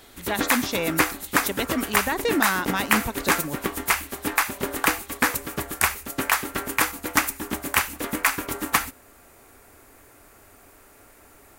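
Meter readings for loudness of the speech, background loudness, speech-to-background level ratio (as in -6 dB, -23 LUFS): -28.0 LUFS, -24.5 LUFS, -3.5 dB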